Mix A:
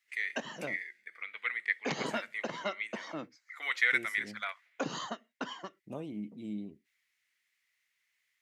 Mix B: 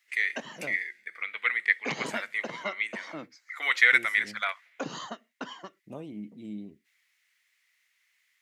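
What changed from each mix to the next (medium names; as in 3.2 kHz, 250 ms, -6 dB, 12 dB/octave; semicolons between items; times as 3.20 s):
first voice +7.5 dB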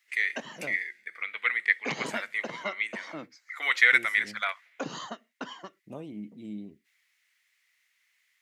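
no change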